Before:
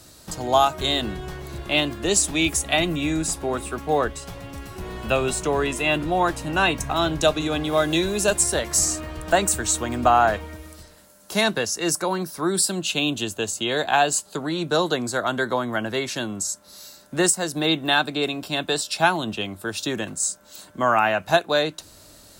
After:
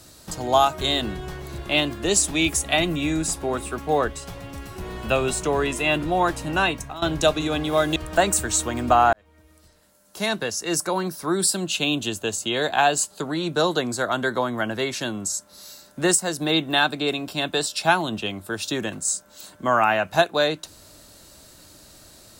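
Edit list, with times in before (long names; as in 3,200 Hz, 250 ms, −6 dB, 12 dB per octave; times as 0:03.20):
0:06.56–0:07.02: fade out linear, to −16.5 dB
0:07.96–0:09.11: remove
0:10.28–0:12.10: fade in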